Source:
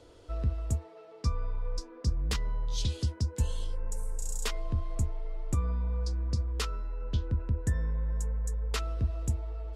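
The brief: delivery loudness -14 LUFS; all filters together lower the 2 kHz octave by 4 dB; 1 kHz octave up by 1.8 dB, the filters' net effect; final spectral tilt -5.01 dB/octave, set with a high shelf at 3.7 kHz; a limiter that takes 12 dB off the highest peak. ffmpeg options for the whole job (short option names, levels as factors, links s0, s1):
-af "equalizer=f=1000:t=o:g=4.5,equalizer=f=2000:t=o:g=-9,highshelf=f=3700:g=7,volume=15,alimiter=limit=0.631:level=0:latency=1"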